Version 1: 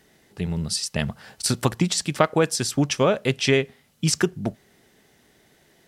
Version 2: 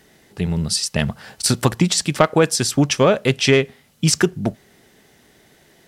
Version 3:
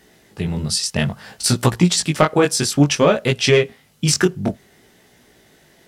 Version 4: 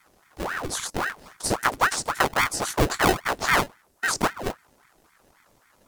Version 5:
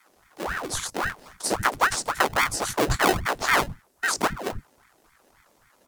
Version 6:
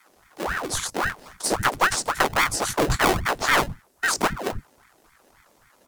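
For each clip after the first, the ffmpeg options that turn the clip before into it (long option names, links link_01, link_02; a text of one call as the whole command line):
ffmpeg -i in.wav -af "acontrast=36" out.wav
ffmpeg -i in.wav -af "flanger=delay=16.5:depth=5.2:speed=0.58,volume=3.5dB" out.wav
ffmpeg -i in.wav -filter_complex "[0:a]acrossover=split=4500[link_01][link_02];[link_01]acrusher=samples=39:mix=1:aa=0.000001[link_03];[link_03][link_02]amix=inputs=2:normalize=0,aeval=exprs='val(0)*sin(2*PI*940*n/s+940*0.85/3.7*sin(2*PI*3.7*n/s))':channel_layout=same,volume=-4.5dB" out.wav
ffmpeg -i in.wav -filter_complex "[0:a]acrossover=split=180[link_01][link_02];[link_01]adelay=90[link_03];[link_03][link_02]amix=inputs=2:normalize=0" out.wav
ffmpeg -i in.wav -af "aeval=exprs='clip(val(0),-1,0.112)':channel_layout=same,volume=2.5dB" out.wav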